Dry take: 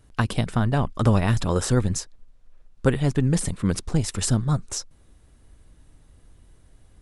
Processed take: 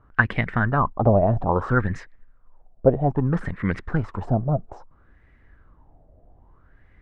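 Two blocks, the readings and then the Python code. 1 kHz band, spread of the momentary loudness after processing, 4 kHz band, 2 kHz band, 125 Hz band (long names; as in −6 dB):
+6.0 dB, 8 LU, below −10 dB, +8.0 dB, −1.5 dB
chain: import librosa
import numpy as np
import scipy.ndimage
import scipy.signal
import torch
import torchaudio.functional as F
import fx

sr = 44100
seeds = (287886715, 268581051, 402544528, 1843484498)

y = fx.filter_lfo_lowpass(x, sr, shape='sine', hz=0.61, low_hz=640.0, high_hz=2000.0, q=6.5)
y = y * librosa.db_to_amplitude(-1.5)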